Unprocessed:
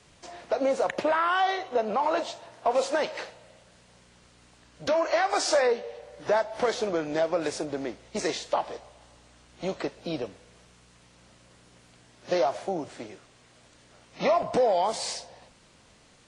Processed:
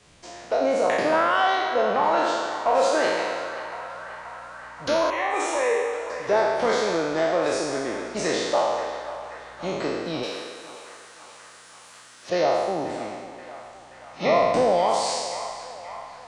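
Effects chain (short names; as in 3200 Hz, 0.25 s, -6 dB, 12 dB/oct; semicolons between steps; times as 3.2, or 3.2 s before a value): spectral trails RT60 1.62 s; 5.1–6.1 fixed phaser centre 980 Hz, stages 8; 10.23–12.3 tilt +3.5 dB/oct; narrowing echo 0.53 s, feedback 79%, band-pass 1400 Hz, level -10.5 dB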